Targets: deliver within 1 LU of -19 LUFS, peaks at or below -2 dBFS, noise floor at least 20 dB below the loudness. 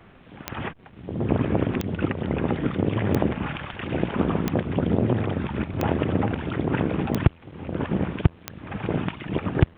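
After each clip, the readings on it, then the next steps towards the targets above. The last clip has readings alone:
clicks found 7; loudness -26.0 LUFS; peak level -4.0 dBFS; loudness target -19.0 LUFS
-> de-click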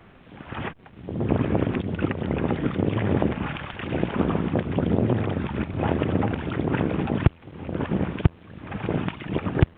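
clicks found 0; loudness -26.0 LUFS; peak level -4.0 dBFS; loudness target -19.0 LUFS
-> trim +7 dB; peak limiter -2 dBFS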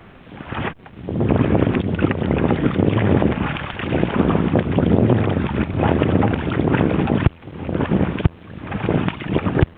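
loudness -19.5 LUFS; peak level -2.0 dBFS; noise floor -43 dBFS

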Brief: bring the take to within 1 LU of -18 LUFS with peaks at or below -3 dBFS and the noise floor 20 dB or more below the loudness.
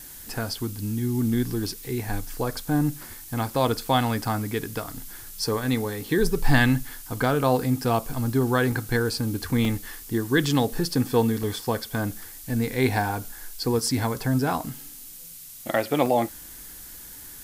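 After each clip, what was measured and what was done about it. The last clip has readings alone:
dropouts 5; longest dropout 3.0 ms; noise floor -42 dBFS; noise floor target -46 dBFS; loudness -25.5 LUFS; peak level -7.0 dBFS; loudness target -18.0 LUFS
-> interpolate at 4.25/8.72/9.65/11.43/16.06 s, 3 ms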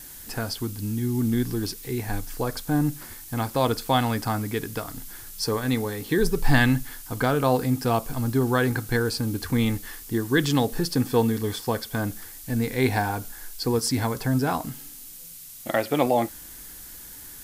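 dropouts 0; noise floor -42 dBFS; noise floor target -46 dBFS
-> noise reduction 6 dB, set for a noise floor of -42 dBFS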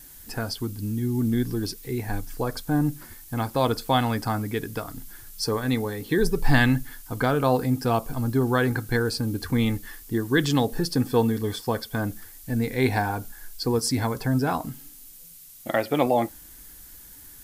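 noise floor -47 dBFS; loudness -25.5 LUFS; peak level -7.5 dBFS; loudness target -18.0 LUFS
-> trim +7.5 dB; peak limiter -3 dBFS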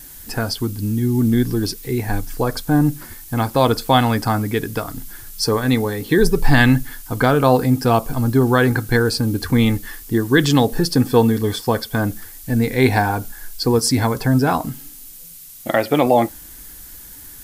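loudness -18.5 LUFS; peak level -3.0 dBFS; noise floor -39 dBFS

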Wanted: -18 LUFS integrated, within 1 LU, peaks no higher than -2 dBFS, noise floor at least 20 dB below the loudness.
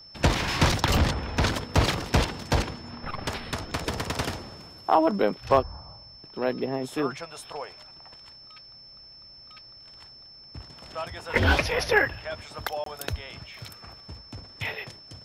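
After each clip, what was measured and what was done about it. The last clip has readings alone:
dropouts 1; longest dropout 23 ms; steady tone 5.3 kHz; tone level -46 dBFS; loudness -27.0 LUFS; peak level -8.5 dBFS; loudness target -18.0 LUFS
-> interpolate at 12.84 s, 23 ms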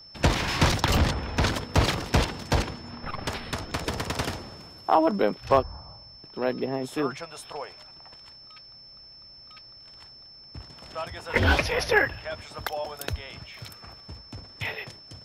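dropouts 0; steady tone 5.3 kHz; tone level -46 dBFS
-> band-stop 5.3 kHz, Q 30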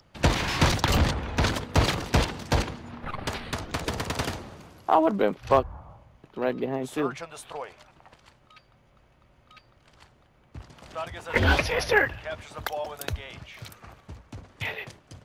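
steady tone not found; loudness -27.0 LUFS; peak level -8.0 dBFS; loudness target -18.0 LUFS
-> trim +9 dB; peak limiter -2 dBFS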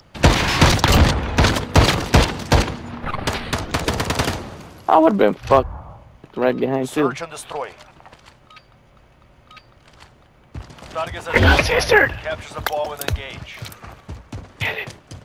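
loudness -18.5 LUFS; peak level -2.0 dBFS; noise floor -52 dBFS

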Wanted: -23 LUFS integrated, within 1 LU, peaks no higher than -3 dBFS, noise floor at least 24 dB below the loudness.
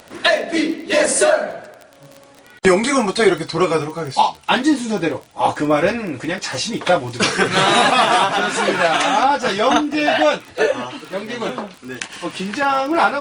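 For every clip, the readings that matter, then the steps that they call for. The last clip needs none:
tick rate 23 per s; loudness -17.5 LUFS; peak level -2.0 dBFS; loudness target -23.0 LUFS
-> de-click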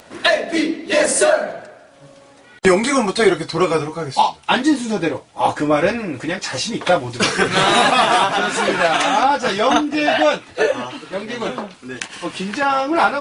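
tick rate 0.15 per s; loudness -17.5 LUFS; peak level -1.5 dBFS; loudness target -23.0 LUFS
-> trim -5.5 dB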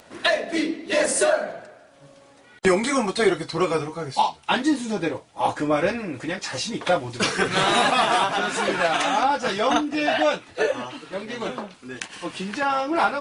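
loudness -23.0 LUFS; peak level -7.0 dBFS; noise floor -52 dBFS

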